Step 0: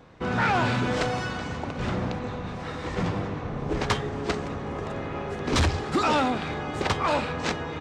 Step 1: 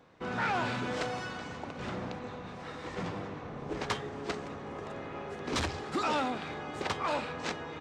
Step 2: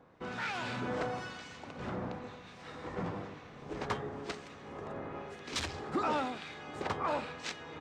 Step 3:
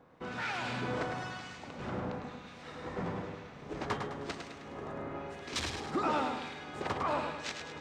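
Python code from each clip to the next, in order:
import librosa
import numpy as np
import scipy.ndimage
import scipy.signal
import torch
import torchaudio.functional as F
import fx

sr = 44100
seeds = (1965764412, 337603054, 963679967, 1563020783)

y1 = fx.low_shelf(x, sr, hz=110.0, db=-12.0)
y1 = y1 * 10.0 ** (-7.0 / 20.0)
y2 = fx.harmonic_tremolo(y1, sr, hz=1.0, depth_pct=70, crossover_hz=1800.0)
y3 = fx.echo_feedback(y2, sr, ms=104, feedback_pct=47, wet_db=-6.0)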